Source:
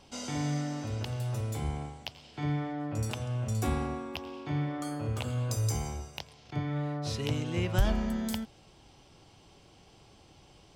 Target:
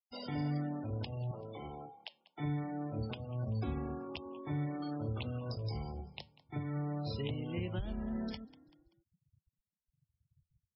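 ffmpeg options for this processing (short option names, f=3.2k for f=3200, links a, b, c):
-filter_complex "[0:a]asettb=1/sr,asplit=3[a][b][c];[a]atrim=end=1.314[d];[b]atrim=start=1.31:end=2.4,asetpts=PTS-STARTPTS,afade=t=in:d=0.004:c=qsin,afade=t=out:st=1.086:d=0.004:c=qsin,acrossover=split=300 6700:gain=0.178 1 0.0708[e][f][g];[e][f][g]amix=inputs=3:normalize=0[h];[c]atrim=start=2.396[i];[d][h]acrossfade=d=0.004:c1=hsin:c2=qsin[j];[j][i]acrossfade=d=0.004:c1=qsin:c2=hsin,asettb=1/sr,asplit=3[k][l][m];[k]atrim=end=6.644[n];[l]atrim=start=6.64:end=8.07,asetpts=PTS-STARTPTS,afade=t=in:d=0.004:c=qsin,afade=t=out:st=1.426:d=0.004:c=qsin,acrossover=split=5200[o][p];[p]acompressor=threshold=-60dB:ratio=4:attack=1:release=60[q];[o][q]amix=inputs=2:normalize=0[r];[m]atrim=start=8.066[s];[n][r]acrossfade=d=0.004:c1=hsin:c2=qsin[t];[t][s]acrossfade=d=0.004:c1=qsin:c2=hsin,afftfilt=real='re*gte(hypot(re,im),0.0126)':imag='im*gte(hypot(re,im),0.0126)':win_size=1024:overlap=0.75,asplit=4[u][v][w][x];[v]adelay=193,afreqshift=38,volume=-22.5dB[y];[w]adelay=386,afreqshift=76,volume=-30.9dB[z];[x]adelay=579,afreqshift=114,volume=-39.3dB[aa];[u][y][z][aa]amix=inputs=4:normalize=0,flanger=delay=2:depth=4.2:regen=-82:speed=0.23:shape=sinusoidal,acrossover=split=470|3000[ab][ac][ad];[ac]acompressor=threshold=-49dB:ratio=4[ae];[ab][ae][ad]amix=inputs=3:normalize=0,alimiter=level_in=5dB:limit=-24dB:level=0:latency=1:release=358,volume=-5dB,lowshelf=f=110:g=-4,volume=3dB" -ar 22050 -c:a libmp3lame -b:a 16k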